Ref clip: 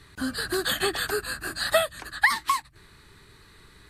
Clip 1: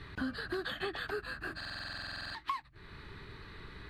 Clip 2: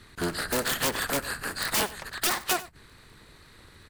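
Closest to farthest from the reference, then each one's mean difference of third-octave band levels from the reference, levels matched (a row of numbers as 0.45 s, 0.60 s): 2, 1; 6.0 dB, 9.0 dB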